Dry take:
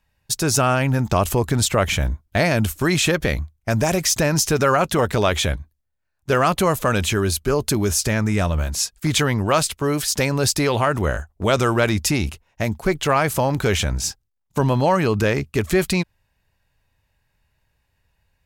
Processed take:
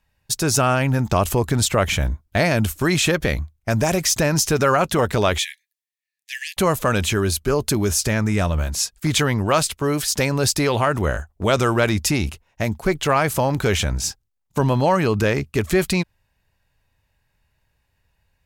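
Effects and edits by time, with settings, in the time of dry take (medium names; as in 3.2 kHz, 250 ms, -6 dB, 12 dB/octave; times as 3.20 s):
5.38–6.57 s: Chebyshev high-pass 1.7 kHz, order 10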